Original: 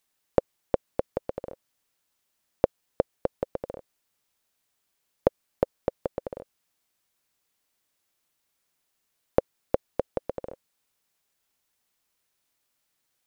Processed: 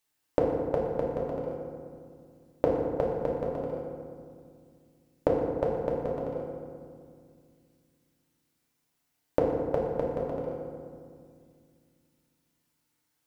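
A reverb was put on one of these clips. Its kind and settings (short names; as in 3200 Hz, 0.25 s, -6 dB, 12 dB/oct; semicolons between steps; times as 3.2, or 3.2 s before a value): FDN reverb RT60 2.1 s, low-frequency decay 1.55×, high-frequency decay 0.5×, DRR -4 dB; gain -5 dB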